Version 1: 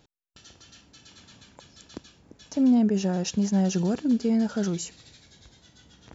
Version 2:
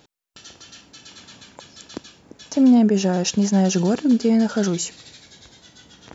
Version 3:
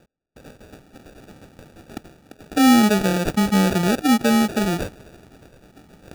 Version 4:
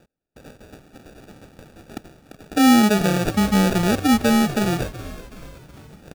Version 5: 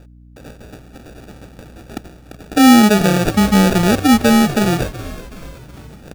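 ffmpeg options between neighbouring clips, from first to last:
-af "lowshelf=f=120:g=-12,volume=8.5dB"
-af "acrusher=samples=42:mix=1:aa=0.000001"
-filter_complex "[0:a]asplit=6[a][b][c][d][e][f];[b]adelay=374,afreqshift=-93,volume=-15.5dB[g];[c]adelay=748,afreqshift=-186,volume=-21dB[h];[d]adelay=1122,afreqshift=-279,volume=-26.5dB[i];[e]adelay=1496,afreqshift=-372,volume=-32dB[j];[f]adelay=1870,afreqshift=-465,volume=-37.6dB[k];[a][g][h][i][j][k]amix=inputs=6:normalize=0"
-af "aeval=exprs='val(0)+0.00447*(sin(2*PI*60*n/s)+sin(2*PI*2*60*n/s)/2+sin(2*PI*3*60*n/s)/3+sin(2*PI*4*60*n/s)/4+sin(2*PI*5*60*n/s)/5)':c=same,volume=5.5dB"

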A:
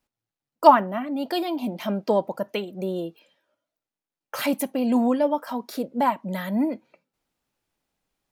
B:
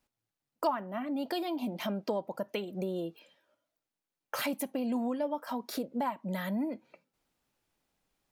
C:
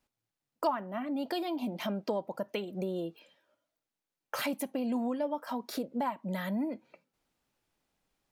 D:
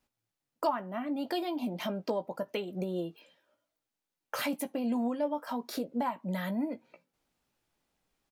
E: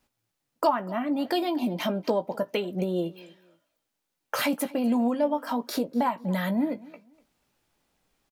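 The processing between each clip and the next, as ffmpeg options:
-af "acompressor=threshold=-33dB:ratio=3"
-af "highshelf=f=9.9k:g=-3.5"
-filter_complex "[0:a]asplit=2[a][b];[b]adelay=17,volume=-10dB[c];[a][c]amix=inputs=2:normalize=0"
-af "aecho=1:1:244|488:0.0841|0.0202,volume=6.5dB"

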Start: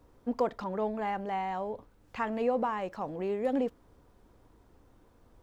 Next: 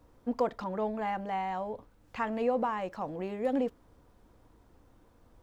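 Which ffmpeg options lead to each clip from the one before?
-af "bandreject=f=400:w=12"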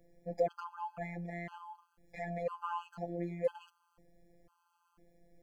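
-af "afftfilt=real='hypot(re,im)*cos(PI*b)':imag='0':win_size=1024:overlap=0.75,bandreject=f=3.7k:w=5.8,afftfilt=real='re*gt(sin(2*PI*1*pts/sr)*(1-2*mod(floor(b*sr/1024/830),2)),0)':imag='im*gt(sin(2*PI*1*pts/sr)*(1-2*mod(floor(b*sr/1024/830),2)),0)':win_size=1024:overlap=0.75,volume=1dB"

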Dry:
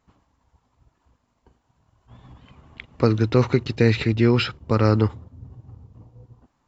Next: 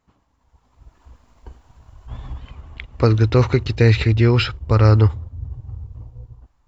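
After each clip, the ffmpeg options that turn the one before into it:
-af "asubboost=boost=12:cutoff=59,dynaudnorm=f=240:g=7:m=14dB,volume=-1dB"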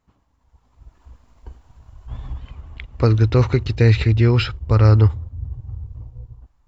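-af "lowshelf=f=140:g=5,volume=-2.5dB"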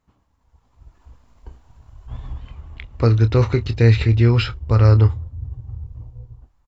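-filter_complex "[0:a]asplit=2[a][b];[b]adelay=26,volume=-11dB[c];[a][c]amix=inputs=2:normalize=0,volume=-1dB"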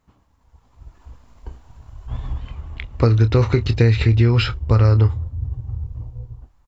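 -af "acompressor=threshold=-15dB:ratio=6,volume=4.5dB"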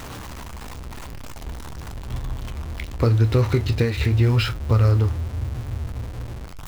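-af "aeval=exprs='val(0)+0.5*0.0562*sgn(val(0))':c=same,flanger=delay=7.4:depth=6.2:regen=-66:speed=0.88:shape=sinusoidal"

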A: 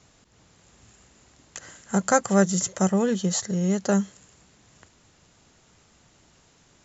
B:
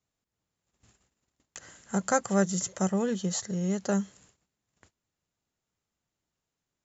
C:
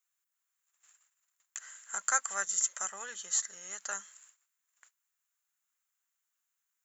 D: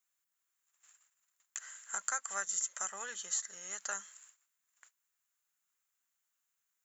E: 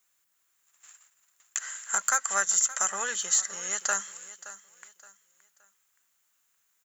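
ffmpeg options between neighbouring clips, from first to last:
-af "agate=range=-22dB:threshold=-53dB:ratio=16:detection=peak,volume=-5.5dB"
-af "highpass=f=1.4k:t=q:w=1.7,aexciter=amount=4.5:drive=3.9:freq=6.9k,volume=-4dB"
-af "acompressor=threshold=-32dB:ratio=4"
-af "aeval=exprs='0.168*sin(PI/2*1.58*val(0)/0.168)':c=same,aecho=1:1:571|1142|1713:0.15|0.0479|0.0153,volume=3.5dB"

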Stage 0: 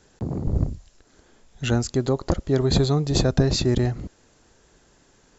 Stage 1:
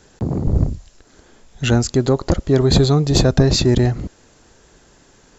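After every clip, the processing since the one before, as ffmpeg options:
-af "acontrast=78"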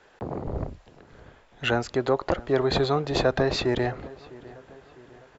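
-filter_complex "[0:a]acrossover=split=450 3300:gain=0.158 1 0.0891[a][b][c];[a][b][c]amix=inputs=3:normalize=0,asplit=2[d][e];[e]adelay=654,lowpass=f=2.2k:p=1,volume=-20dB,asplit=2[f][g];[g]adelay=654,lowpass=f=2.2k:p=1,volume=0.52,asplit=2[h][i];[i]adelay=654,lowpass=f=2.2k:p=1,volume=0.52,asplit=2[j][k];[k]adelay=654,lowpass=f=2.2k:p=1,volume=0.52[l];[d][f][h][j][l]amix=inputs=5:normalize=0"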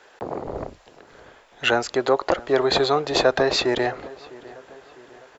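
-af "bass=f=250:g=-13,treble=f=4k:g=3,volume=5.5dB"

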